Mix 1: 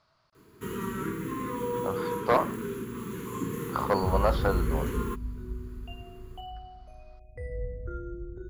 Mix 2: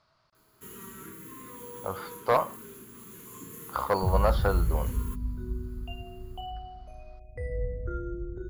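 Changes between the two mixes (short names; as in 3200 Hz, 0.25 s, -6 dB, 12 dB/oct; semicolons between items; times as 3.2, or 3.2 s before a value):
first sound: add pre-emphasis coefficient 0.8; second sound +3.0 dB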